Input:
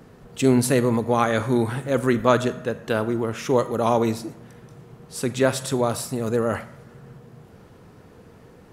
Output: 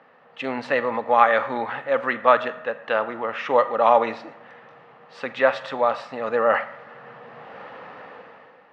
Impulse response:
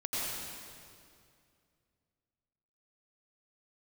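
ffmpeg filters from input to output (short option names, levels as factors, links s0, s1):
-af "equalizer=f=1900:t=o:w=0.45:g=5.5,dynaudnorm=f=160:g=9:m=5.62,highpass=350,equalizer=f=370:t=q:w=4:g=-10,equalizer=f=550:t=q:w=4:g=8,equalizer=f=820:t=q:w=4:g=9,equalizer=f=1200:t=q:w=4:g=9,equalizer=f=1800:t=q:w=4:g=5,equalizer=f=2700:t=q:w=4:g=6,lowpass=f=3900:w=0.5412,lowpass=f=3900:w=1.3066,volume=0.473"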